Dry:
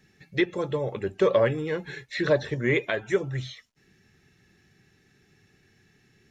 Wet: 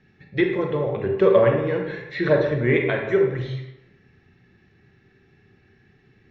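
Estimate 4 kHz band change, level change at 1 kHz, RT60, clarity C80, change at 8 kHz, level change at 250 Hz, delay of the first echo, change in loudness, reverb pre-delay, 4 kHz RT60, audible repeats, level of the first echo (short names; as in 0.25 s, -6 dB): -1.5 dB, +4.5 dB, 1.0 s, 6.5 dB, n/a, +5.5 dB, none, +5.0 dB, 28 ms, 0.60 s, none, none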